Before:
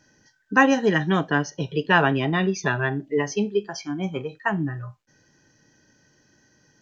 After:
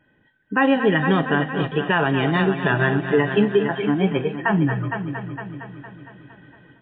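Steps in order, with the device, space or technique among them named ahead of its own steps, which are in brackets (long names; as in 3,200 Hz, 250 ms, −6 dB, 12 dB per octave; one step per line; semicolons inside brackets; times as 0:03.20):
echo machine with several playback heads 230 ms, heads first and second, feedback 50%, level −14 dB
low-bitrate web radio (automatic gain control gain up to 11 dB; brickwall limiter −7.5 dBFS, peak gain reduction 6.5 dB; MP3 24 kbit/s 8,000 Hz)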